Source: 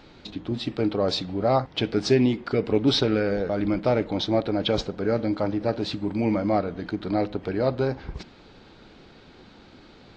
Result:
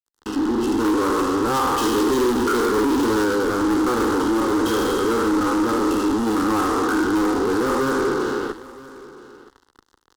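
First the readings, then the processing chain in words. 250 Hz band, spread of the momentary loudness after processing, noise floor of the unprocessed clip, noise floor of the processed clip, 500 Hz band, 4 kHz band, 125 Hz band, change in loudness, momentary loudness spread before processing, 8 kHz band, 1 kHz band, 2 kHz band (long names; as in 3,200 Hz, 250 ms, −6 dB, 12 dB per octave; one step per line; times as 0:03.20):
+6.0 dB, 4 LU, −51 dBFS, −65 dBFS, +3.5 dB, −0.5 dB, −5.5 dB, +5.0 dB, 9 LU, can't be measured, +9.5 dB, +9.5 dB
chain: peak hold with a decay on every bin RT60 2.16 s
mains-hum notches 50/100/150/200/250/300/350/400/450 Hz
brick-wall band-pass 130–3,300 Hz
comb filter 0.8 ms, depth 62%
in parallel at +1 dB: output level in coarse steps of 20 dB
on the sum: fuzz pedal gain 28 dB, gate −37 dBFS
phaser with its sweep stopped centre 640 Hz, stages 6
soft clipping −13.5 dBFS, distortion −18 dB
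on a send: single-tap delay 969 ms −19.5 dB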